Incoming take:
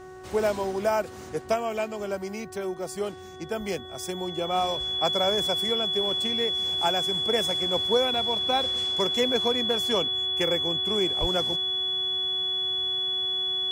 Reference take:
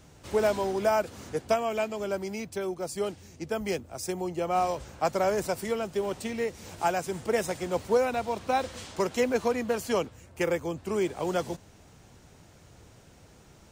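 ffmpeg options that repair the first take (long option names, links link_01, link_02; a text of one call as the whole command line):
ffmpeg -i in.wav -filter_complex "[0:a]bandreject=frequency=372.6:width_type=h:width=4,bandreject=frequency=745.2:width_type=h:width=4,bandreject=frequency=1117.8:width_type=h:width=4,bandreject=frequency=1490.4:width_type=h:width=4,bandreject=frequency=1863:width_type=h:width=4,bandreject=frequency=3400:width=30,asplit=3[link_01][link_02][link_03];[link_01]afade=type=out:start_time=11.2:duration=0.02[link_04];[link_02]highpass=frequency=140:width=0.5412,highpass=frequency=140:width=1.3066,afade=type=in:start_time=11.2:duration=0.02,afade=type=out:start_time=11.32:duration=0.02[link_05];[link_03]afade=type=in:start_time=11.32:duration=0.02[link_06];[link_04][link_05][link_06]amix=inputs=3:normalize=0" out.wav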